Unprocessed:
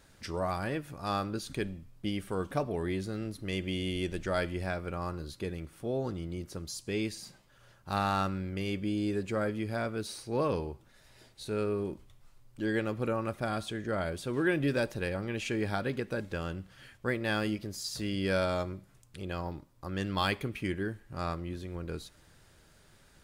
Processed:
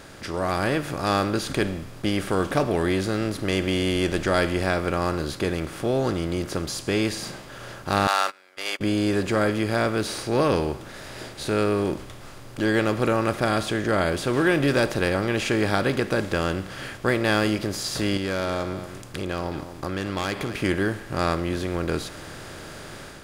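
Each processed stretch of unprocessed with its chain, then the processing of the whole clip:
8.07–8.81 s: high-pass 730 Hz 24 dB/octave + treble shelf 2.3 kHz +6.5 dB + gate -41 dBFS, range -34 dB
18.17–20.62 s: self-modulated delay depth 0.069 ms + compression 2.5:1, threshold -41 dBFS + delay 227 ms -17.5 dB
whole clip: spectral levelling over time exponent 0.6; level rider gain up to 6 dB

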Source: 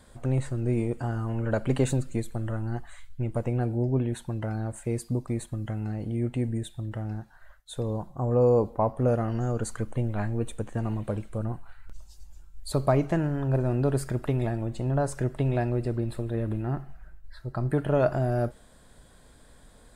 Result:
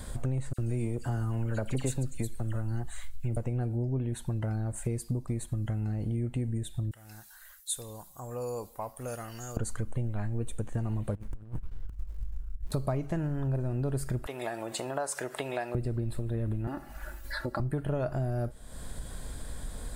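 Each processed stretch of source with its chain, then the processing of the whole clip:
0.53–3.37 s: treble shelf 3 kHz +7.5 dB + phase dispersion lows, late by 53 ms, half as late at 2.5 kHz
6.91–9.57 s: pre-emphasis filter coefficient 0.97 + tape noise reduction on one side only encoder only
11.15–12.72 s: compressor with a negative ratio -38 dBFS, ratio -0.5 + static phaser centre 1.7 kHz, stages 4 + sliding maximum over 65 samples
14.26–15.75 s: high-pass 650 Hz + upward compressor, threshold -38 dBFS
16.67–17.60 s: high-pass 290 Hz 6 dB/octave + comb 3.5 ms, depth 80% + three bands compressed up and down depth 70%
whole clip: bass shelf 120 Hz +10.5 dB; compression 4:1, threshold -40 dBFS; treble shelf 7.3 kHz +8.5 dB; trim +8.5 dB

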